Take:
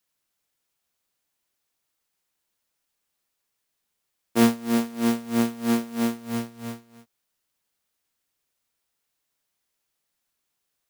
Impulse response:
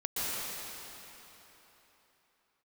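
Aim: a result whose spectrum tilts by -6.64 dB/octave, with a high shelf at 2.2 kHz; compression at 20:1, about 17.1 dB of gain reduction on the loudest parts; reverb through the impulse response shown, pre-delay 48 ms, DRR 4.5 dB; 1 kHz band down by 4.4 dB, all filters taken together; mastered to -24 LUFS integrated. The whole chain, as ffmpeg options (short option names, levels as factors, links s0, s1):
-filter_complex "[0:a]equalizer=f=1000:t=o:g=-4.5,highshelf=f=2200:g=-8,acompressor=threshold=0.0316:ratio=20,asplit=2[s0][s1];[1:a]atrim=start_sample=2205,adelay=48[s2];[s1][s2]afir=irnorm=-1:irlink=0,volume=0.237[s3];[s0][s3]amix=inputs=2:normalize=0,volume=2.99"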